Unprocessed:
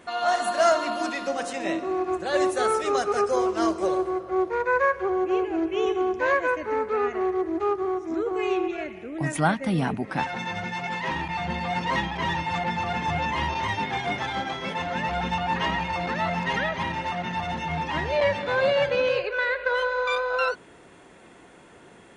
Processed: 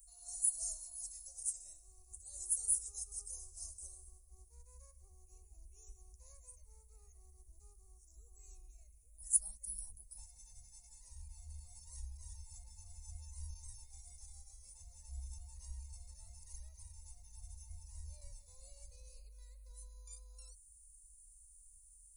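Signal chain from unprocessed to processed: inverse Chebyshev band-stop 130–3400 Hz, stop band 60 dB; trim +12 dB

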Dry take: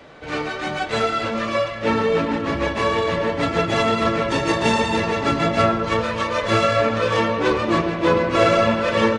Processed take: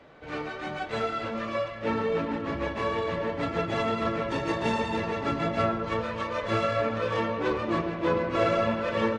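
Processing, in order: treble shelf 4.2 kHz -9.5 dB; trim -8 dB

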